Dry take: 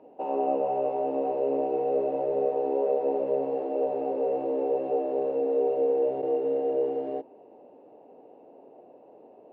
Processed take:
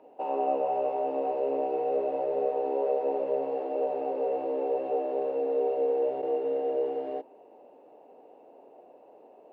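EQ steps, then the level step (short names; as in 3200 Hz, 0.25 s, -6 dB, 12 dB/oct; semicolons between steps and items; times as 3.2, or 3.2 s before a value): low shelf 140 Hz -5 dB; low shelf 450 Hz -10 dB; +3.0 dB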